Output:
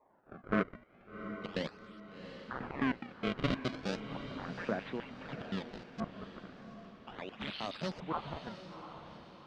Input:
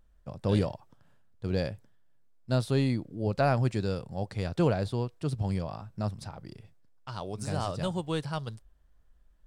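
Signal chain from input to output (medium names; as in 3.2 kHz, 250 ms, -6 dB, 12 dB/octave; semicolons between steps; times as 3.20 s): high-pass 79 Hz 24 dB/octave; treble shelf 6.3 kHz +10 dB; hum notches 60/120/180/240 Hz; LFO high-pass square 4.8 Hz 220–3000 Hz; decimation with a swept rate 29×, swing 160% 0.36 Hz; overdrive pedal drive 23 dB, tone 6.3 kHz, clips at -53.5 dBFS; LFO low-pass saw up 0.5 Hz 980–5400 Hz; echo that smears into a reverb 747 ms, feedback 43%, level -9.5 dB; loudspeaker Doppler distortion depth 0.17 ms; trim -2 dB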